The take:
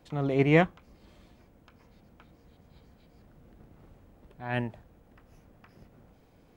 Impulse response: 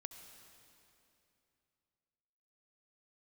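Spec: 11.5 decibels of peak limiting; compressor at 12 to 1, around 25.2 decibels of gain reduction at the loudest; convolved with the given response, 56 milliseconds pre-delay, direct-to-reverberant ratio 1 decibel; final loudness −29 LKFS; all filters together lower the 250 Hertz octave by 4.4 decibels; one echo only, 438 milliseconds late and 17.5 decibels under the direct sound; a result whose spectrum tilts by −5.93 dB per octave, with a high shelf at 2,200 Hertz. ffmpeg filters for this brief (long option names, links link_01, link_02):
-filter_complex "[0:a]equalizer=frequency=250:width_type=o:gain=-6.5,highshelf=frequency=2200:gain=-4,acompressor=threshold=-44dB:ratio=12,alimiter=level_in=21.5dB:limit=-24dB:level=0:latency=1,volume=-21.5dB,aecho=1:1:438:0.133,asplit=2[link_01][link_02];[1:a]atrim=start_sample=2205,adelay=56[link_03];[link_02][link_03]afir=irnorm=-1:irlink=0,volume=3.5dB[link_04];[link_01][link_04]amix=inputs=2:normalize=0,volume=27.5dB"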